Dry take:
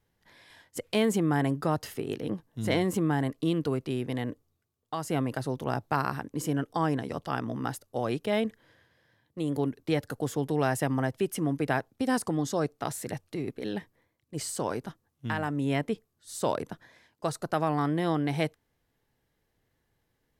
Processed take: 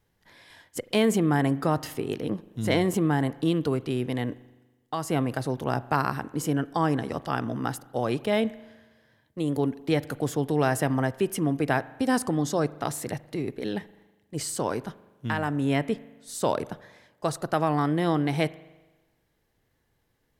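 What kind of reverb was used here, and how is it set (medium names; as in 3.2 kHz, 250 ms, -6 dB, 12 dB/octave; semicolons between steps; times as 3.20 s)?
spring tank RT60 1.2 s, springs 40 ms, chirp 45 ms, DRR 18 dB; trim +3 dB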